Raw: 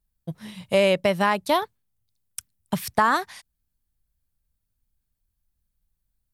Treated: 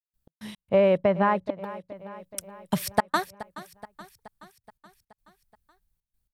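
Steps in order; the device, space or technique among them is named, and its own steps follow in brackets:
0:00.69–0:01.63: low-pass filter 1,400 Hz 12 dB per octave
trance gate with a delay (gate pattern ".x.x.xxxxxx" 110 BPM −60 dB; repeating echo 425 ms, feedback 60%, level −16.5 dB)

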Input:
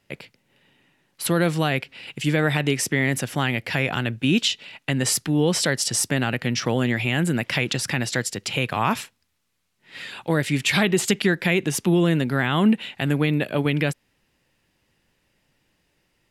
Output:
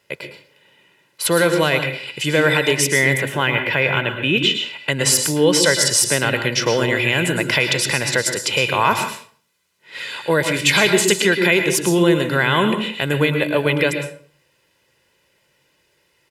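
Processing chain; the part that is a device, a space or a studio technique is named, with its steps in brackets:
high-pass filter 290 Hz 6 dB per octave
0:03.17–0:04.66: flat-topped bell 6,900 Hz −13.5 dB
microphone above a desk (comb filter 2 ms, depth 54%; convolution reverb RT60 0.50 s, pre-delay 103 ms, DRR 6 dB)
level +5.5 dB

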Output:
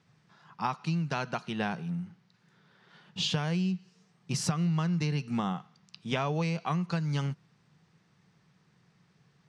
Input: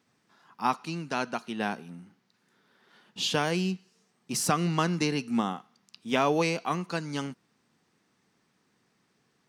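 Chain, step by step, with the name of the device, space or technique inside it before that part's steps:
jukebox (low-pass filter 6,100 Hz 12 dB per octave; low shelf with overshoot 200 Hz +6.5 dB, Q 3; downward compressor 5 to 1, threshold −29 dBFS, peak gain reduction 13 dB)
level +2 dB

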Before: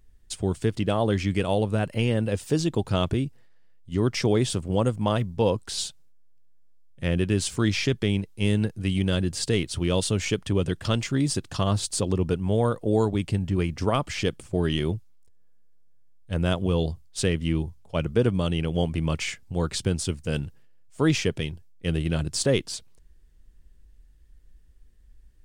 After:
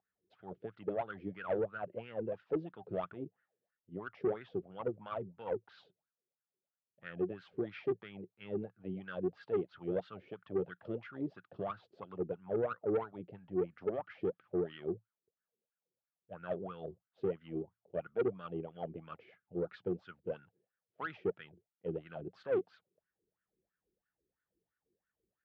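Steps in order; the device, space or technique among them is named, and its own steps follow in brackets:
wah-wah guitar rig (LFO wah 3 Hz 360–1,500 Hz, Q 8.6; tube saturation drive 28 dB, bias 0.25; loudspeaker in its box 76–3,700 Hz, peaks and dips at 110 Hz +7 dB, 180 Hz +9 dB, 1,000 Hz −8 dB)
level +2 dB

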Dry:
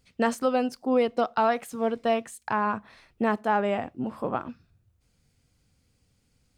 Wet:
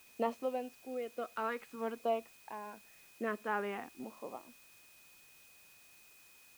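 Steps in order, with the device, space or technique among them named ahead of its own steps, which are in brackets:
shortwave radio (band-pass filter 320–2,500 Hz; amplitude tremolo 0.56 Hz, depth 69%; auto-filter notch saw down 0.5 Hz 530–1,900 Hz; steady tone 2,500 Hz −58 dBFS; white noise bed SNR 21 dB)
level −5.5 dB

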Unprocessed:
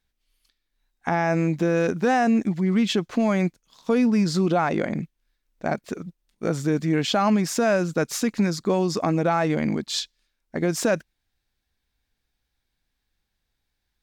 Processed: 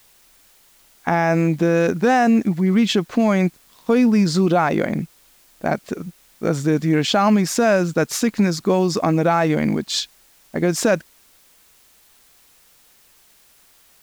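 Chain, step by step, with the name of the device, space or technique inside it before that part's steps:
plain cassette with noise reduction switched in (one half of a high-frequency compander decoder only; tape wow and flutter 10 cents; white noise bed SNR 34 dB)
level +4.5 dB

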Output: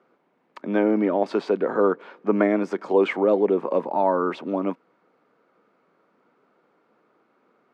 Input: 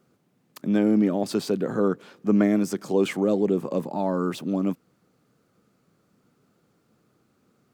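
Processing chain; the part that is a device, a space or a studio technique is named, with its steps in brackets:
high-pass filter 98 Hz
tin-can telephone (band-pass filter 420–2,000 Hz; hollow resonant body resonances 950/2,200 Hz, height 7 dB)
level +7 dB

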